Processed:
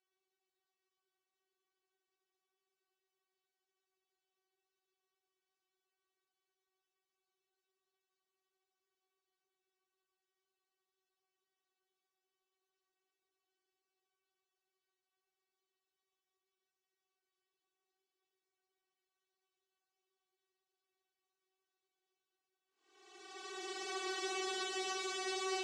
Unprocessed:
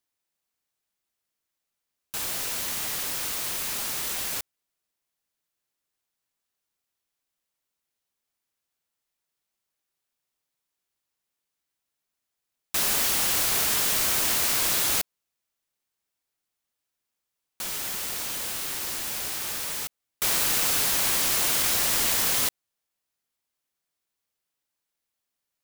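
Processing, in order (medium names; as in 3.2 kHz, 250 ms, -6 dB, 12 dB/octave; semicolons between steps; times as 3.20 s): vocoder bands 4, saw 378 Hz; Paulstretch 25×, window 0.10 s, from 16.65 s; trim -3 dB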